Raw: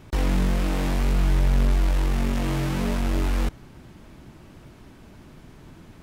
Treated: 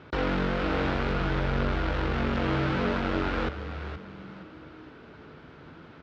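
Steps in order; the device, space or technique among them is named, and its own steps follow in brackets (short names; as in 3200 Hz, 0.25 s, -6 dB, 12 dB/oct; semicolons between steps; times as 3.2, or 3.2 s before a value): frequency-shifting delay pedal into a guitar cabinet (frequency-shifting echo 0.47 s, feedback 34%, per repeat -120 Hz, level -9.5 dB; speaker cabinet 92–4200 Hz, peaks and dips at 110 Hz -8 dB, 200 Hz -6 dB, 480 Hz +5 dB, 1400 Hz +9 dB)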